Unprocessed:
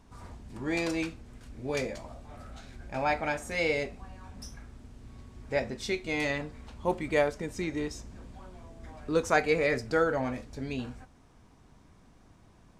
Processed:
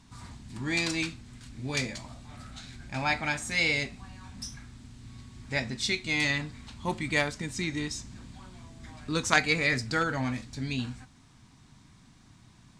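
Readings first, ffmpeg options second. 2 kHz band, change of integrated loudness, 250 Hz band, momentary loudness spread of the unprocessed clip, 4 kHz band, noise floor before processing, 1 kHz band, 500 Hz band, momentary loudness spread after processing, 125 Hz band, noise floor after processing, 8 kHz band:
+4.5 dB, +1.5 dB, +0.5 dB, 22 LU, +9.0 dB, −58 dBFS, −1.0 dB, −7.0 dB, 22 LU, +4.5 dB, −57 dBFS, +8.0 dB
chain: -af "aeval=exprs='0.316*(cos(1*acos(clip(val(0)/0.316,-1,1)))-cos(1*PI/2))+0.0631*(cos(3*acos(clip(val(0)/0.316,-1,1)))-cos(3*PI/2))+0.0126*(cos(5*acos(clip(val(0)/0.316,-1,1)))-cos(5*PI/2))':channel_layout=same,equalizer=frequency=125:width_type=o:width=1:gain=10,equalizer=frequency=250:width_type=o:width=1:gain=6,equalizer=frequency=500:width_type=o:width=1:gain=-7,equalizer=frequency=1000:width_type=o:width=1:gain=4,equalizer=frequency=2000:width_type=o:width=1:gain=6,equalizer=frequency=4000:width_type=o:width=1:gain=11,equalizer=frequency=8000:width_type=o:width=1:gain=11"

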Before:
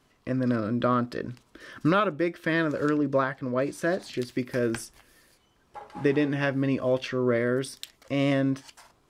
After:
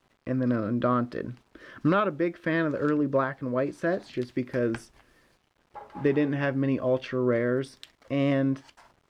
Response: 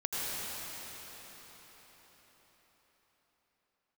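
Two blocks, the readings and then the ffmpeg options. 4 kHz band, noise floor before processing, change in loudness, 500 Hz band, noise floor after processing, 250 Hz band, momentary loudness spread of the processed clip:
−5.5 dB, −65 dBFS, −0.5 dB, −0.5 dB, −69 dBFS, 0.0 dB, 8 LU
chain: -af "acrusher=bits=9:mix=0:aa=0.000001,asoftclip=type=hard:threshold=-14.5dB,aemphasis=mode=reproduction:type=75kf"

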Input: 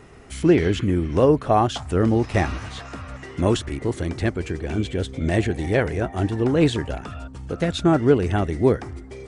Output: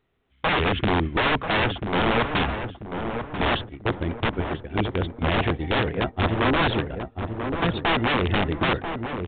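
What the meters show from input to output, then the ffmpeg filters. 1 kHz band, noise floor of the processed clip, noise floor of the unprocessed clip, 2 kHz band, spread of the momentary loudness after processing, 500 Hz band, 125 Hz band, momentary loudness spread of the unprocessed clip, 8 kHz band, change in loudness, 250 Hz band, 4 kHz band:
+2.0 dB, −56 dBFS, −40 dBFS, +6.0 dB, 8 LU, −5.0 dB, −4.0 dB, 15 LU, below −40 dB, −3.0 dB, −5.0 dB, +5.5 dB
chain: -filter_complex "[0:a]agate=range=-29dB:threshold=-25dB:ratio=16:detection=peak,aeval=exprs='(mod(5.96*val(0)+1,2)-1)/5.96':channel_layout=same,asplit=2[link_01][link_02];[link_02]adelay=989,lowpass=frequency=1200:poles=1,volume=-6dB,asplit=2[link_03][link_04];[link_04]adelay=989,lowpass=frequency=1200:poles=1,volume=0.42,asplit=2[link_05][link_06];[link_06]adelay=989,lowpass=frequency=1200:poles=1,volume=0.42,asplit=2[link_07][link_08];[link_08]adelay=989,lowpass=frequency=1200:poles=1,volume=0.42,asplit=2[link_09][link_10];[link_10]adelay=989,lowpass=frequency=1200:poles=1,volume=0.42[link_11];[link_03][link_05][link_07][link_09][link_11]amix=inputs=5:normalize=0[link_12];[link_01][link_12]amix=inputs=2:normalize=0" -ar 8000 -c:a pcm_mulaw

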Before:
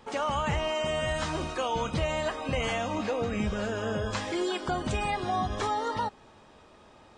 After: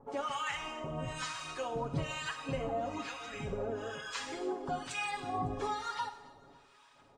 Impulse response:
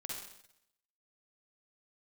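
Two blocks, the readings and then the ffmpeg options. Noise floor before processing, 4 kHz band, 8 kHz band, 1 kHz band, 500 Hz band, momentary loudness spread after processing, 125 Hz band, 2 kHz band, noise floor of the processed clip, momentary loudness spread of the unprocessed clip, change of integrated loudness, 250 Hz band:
−55 dBFS, −7.0 dB, −4.5 dB, −7.0 dB, −8.5 dB, 4 LU, −8.0 dB, −6.0 dB, −62 dBFS, 2 LU, −7.5 dB, −8.5 dB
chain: -filter_complex "[0:a]lowshelf=frequency=140:gain=-4,aecho=1:1:7.2:0.71,aphaser=in_gain=1:out_gain=1:delay=4.1:decay=0.3:speed=2:type=sinusoidal,acrossover=split=1000[link_01][link_02];[link_01]aeval=exprs='val(0)*(1-1/2+1/2*cos(2*PI*1.1*n/s))':channel_layout=same[link_03];[link_02]aeval=exprs='val(0)*(1-1/2-1/2*cos(2*PI*1.1*n/s))':channel_layout=same[link_04];[link_03][link_04]amix=inputs=2:normalize=0,aecho=1:1:277|554|831|1108:0.0891|0.0455|0.0232|0.0118,asplit=2[link_05][link_06];[1:a]atrim=start_sample=2205,highshelf=frequency=7400:gain=8[link_07];[link_06][link_07]afir=irnorm=-1:irlink=0,volume=-7dB[link_08];[link_05][link_08]amix=inputs=2:normalize=0,volume=-6dB"

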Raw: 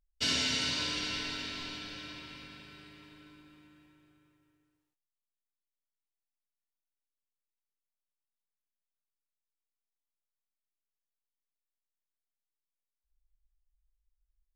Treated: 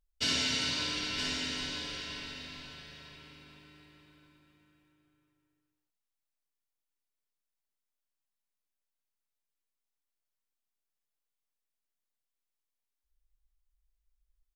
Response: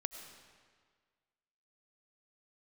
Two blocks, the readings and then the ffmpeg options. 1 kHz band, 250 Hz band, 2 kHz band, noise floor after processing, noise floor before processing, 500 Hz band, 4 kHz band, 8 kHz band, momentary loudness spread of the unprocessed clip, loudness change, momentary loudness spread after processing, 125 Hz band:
+0.5 dB, +1.0 dB, +1.0 dB, below −85 dBFS, below −85 dBFS, +1.0 dB, +1.0 dB, +1.0 dB, 21 LU, 0.0 dB, 20 LU, +1.0 dB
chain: -af "aecho=1:1:966:0.473"

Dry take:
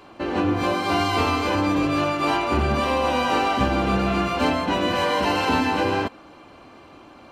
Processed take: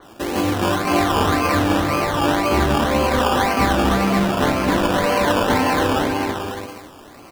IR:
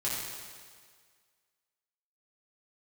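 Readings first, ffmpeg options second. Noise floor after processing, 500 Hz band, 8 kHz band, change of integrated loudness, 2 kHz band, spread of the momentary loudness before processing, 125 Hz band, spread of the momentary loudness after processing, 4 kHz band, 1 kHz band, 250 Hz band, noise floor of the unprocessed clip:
−43 dBFS, +4.0 dB, +9.0 dB, +3.5 dB, +3.5 dB, 2 LU, +4.5 dB, 5 LU, +2.5 dB, +3.0 dB, +4.0 dB, −47 dBFS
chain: -af "aecho=1:1:240|432|585.6|708.5|806.8:0.631|0.398|0.251|0.158|0.1,acrusher=samples=17:mix=1:aa=0.000001:lfo=1:lforange=10.2:lforate=1.9,adynamicequalizer=threshold=0.0126:dfrequency=4300:dqfactor=0.7:tfrequency=4300:tqfactor=0.7:attack=5:release=100:ratio=0.375:range=3.5:mode=cutabove:tftype=highshelf,volume=2dB"

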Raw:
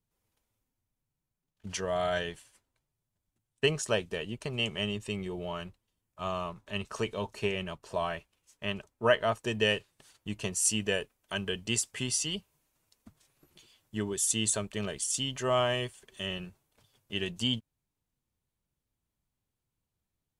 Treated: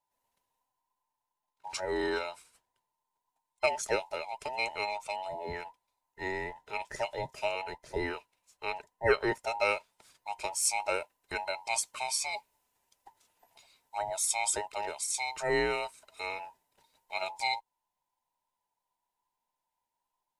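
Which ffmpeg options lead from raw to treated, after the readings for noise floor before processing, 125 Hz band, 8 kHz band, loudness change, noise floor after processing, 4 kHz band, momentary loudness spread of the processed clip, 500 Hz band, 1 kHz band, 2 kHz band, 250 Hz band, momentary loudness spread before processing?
below −85 dBFS, −12.0 dB, −2.0 dB, −1.5 dB, below −85 dBFS, −6.5 dB, 12 LU, −1.5 dB, +3.5 dB, +1.0 dB, −7.5 dB, 12 LU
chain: -af "afftfilt=real='real(if(between(b,1,1008),(2*floor((b-1)/48)+1)*48-b,b),0)':imag='imag(if(between(b,1,1008),(2*floor((b-1)/48)+1)*48-b,b),0)*if(between(b,1,1008),-1,1)':win_size=2048:overlap=0.75,volume=-1.5dB"

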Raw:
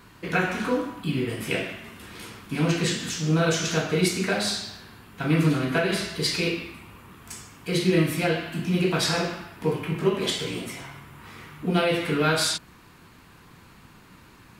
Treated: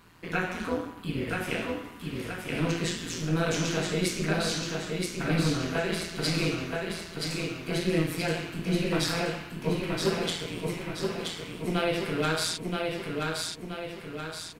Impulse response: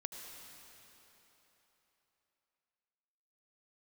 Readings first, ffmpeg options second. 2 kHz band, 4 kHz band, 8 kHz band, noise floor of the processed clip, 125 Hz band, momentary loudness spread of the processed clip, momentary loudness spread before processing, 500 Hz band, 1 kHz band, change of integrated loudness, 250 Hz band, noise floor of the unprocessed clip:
−3.5 dB, −3.5 dB, −3.5 dB, −43 dBFS, −4.0 dB, 8 LU, 18 LU, −3.5 dB, −3.5 dB, −5.0 dB, −4.0 dB, −52 dBFS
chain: -filter_complex "[0:a]tremolo=f=170:d=0.667,asplit=2[link_01][link_02];[link_02]aecho=0:1:976|1952|2928|3904|4880|5856|6832:0.668|0.334|0.167|0.0835|0.0418|0.0209|0.0104[link_03];[link_01][link_03]amix=inputs=2:normalize=0,volume=-2.5dB"

